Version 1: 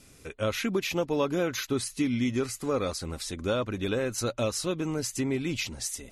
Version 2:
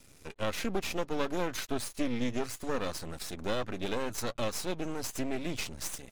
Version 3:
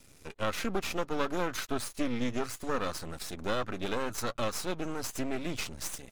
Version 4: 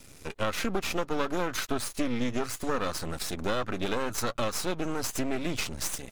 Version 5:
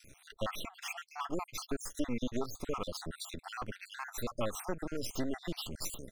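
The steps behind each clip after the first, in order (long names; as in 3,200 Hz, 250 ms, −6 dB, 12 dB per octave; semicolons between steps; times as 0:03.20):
half-wave rectification
dynamic equaliser 1,300 Hz, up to +6 dB, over −52 dBFS, Q 2.7
downward compressor 2 to 1, threshold −33 dBFS, peak gain reduction 6 dB; level +6.5 dB
time-frequency cells dropped at random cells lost 61%; level −4 dB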